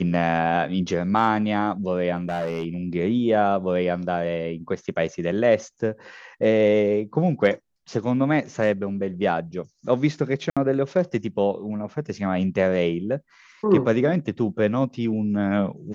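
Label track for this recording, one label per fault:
2.160000	2.660000	clipped -22 dBFS
10.500000	10.570000	gap 66 ms

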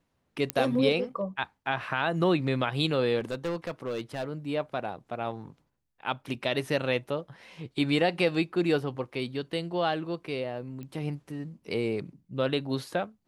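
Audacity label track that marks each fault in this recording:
0.500000	0.500000	pop -11 dBFS
3.190000	4.240000	clipped -27 dBFS
10.830000	10.830000	pop -29 dBFS

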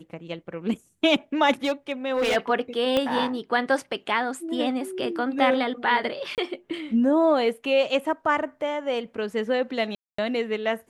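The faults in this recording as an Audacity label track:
1.640000	2.370000	clipped -19.5 dBFS
2.970000	2.970000	pop -11 dBFS
6.350000	6.380000	gap 28 ms
9.950000	10.180000	gap 0.234 s

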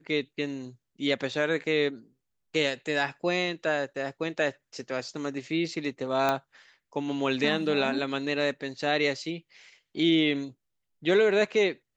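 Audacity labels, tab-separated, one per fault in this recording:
6.290000	6.290000	pop -12 dBFS

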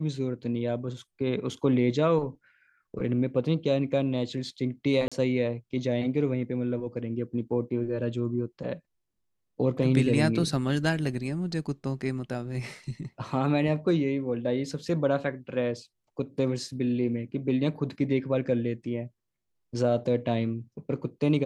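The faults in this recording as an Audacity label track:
5.080000	5.120000	gap 36 ms

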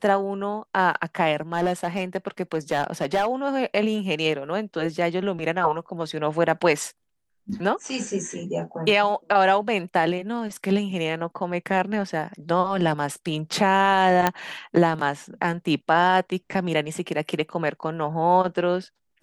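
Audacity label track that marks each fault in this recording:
1.530000	3.320000	clipped -17 dBFS
14.270000	14.270000	pop -5 dBFS

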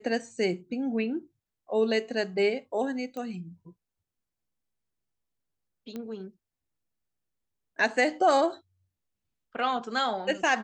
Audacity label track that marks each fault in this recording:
3.170000	3.170000	pop -25 dBFS
5.960000	5.960000	pop -24 dBFS

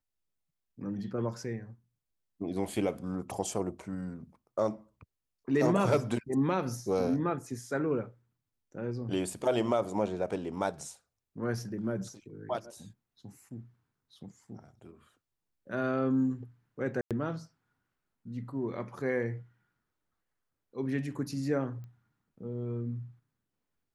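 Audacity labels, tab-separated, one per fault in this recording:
17.010000	17.110000	gap 97 ms
21.840000	21.840000	pop -37 dBFS

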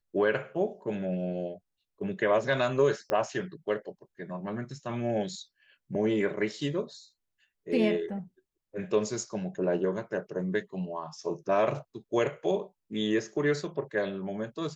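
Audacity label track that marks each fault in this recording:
3.100000	3.100000	pop -17 dBFS

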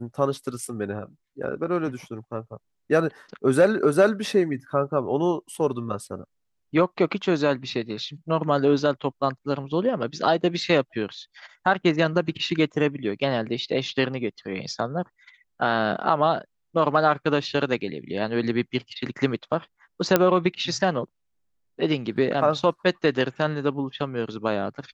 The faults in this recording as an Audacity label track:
20.160000	20.160000	pop -3 dBFS

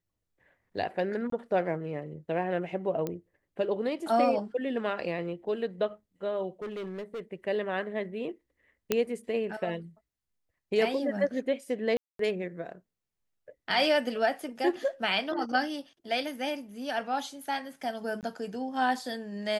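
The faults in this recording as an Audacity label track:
1.300000	1.320000	gap 23 ms
3.070000	3.070000	pop -19 dBFS
6.620000	7.200000	clipped -33.5 dBFS
8.920000	8.920000	pop -11 dBFS
11.970000	12.190000	gap 0.223 s
18.210000	18.230000	gap 18 ms

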